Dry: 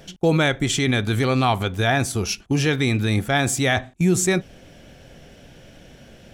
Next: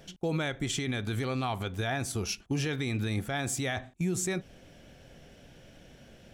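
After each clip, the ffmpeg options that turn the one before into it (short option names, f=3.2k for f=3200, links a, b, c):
-af "alimiter=limit=-14.5dB:level=0:latency=1:release=102,volume=-7.5dB"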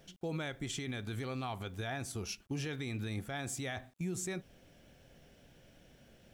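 -af "acrusher=bits=10:mix=0:aa=0.000001,volume=-7.5dB"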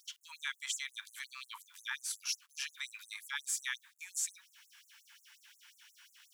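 -filter_complex "[0:a]asplit=2[a][b];[b]acompressor=threshold=-46dB:ratio=6,volume=-1.5dB[c];[a][c]amix=inputs=2:normalize=0,afftfilt=real='re*gte(b*sr/1024,830*pow(6700/830,0.5+0.5*sin(2*PI*5.6*pts/sr)))':imag='im*gte(b*sr/1024,830*pow(6700/830,0.5+0.5*sin(2*PI*5.6*pts/sr)))':win_size=1024:overlap=0.75,volume=4dB"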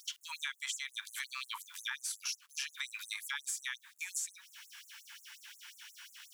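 -af "acompressor=threshold=-44dB:ratio=6,volume=8dB"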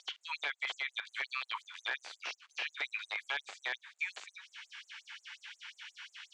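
-filter_complex "[0:a]aeval=exprs='(mod(25.1*val(0)+1,2)-1)/25.1':c=same,acrossover=split=3900[a][b];[b]acompressor=threshold=-55dB:ratio=4:attack=1:release=60[c];[a][c]amix=inputs=2:normalize=0,highpass=f=430:w=0.5412,highpass=f=430:w=1.3066,equalizer=f=740:t=q:w=4:g=3,equalizer=f=2.2k:t=q:w=4:g=3,equalizer=f=5.5k:t=q:w=4:g=-6,lowpass=f=5.9k:w=0.5412,lowpass=f=5.9k:w=1.3066,volume=4.5dB"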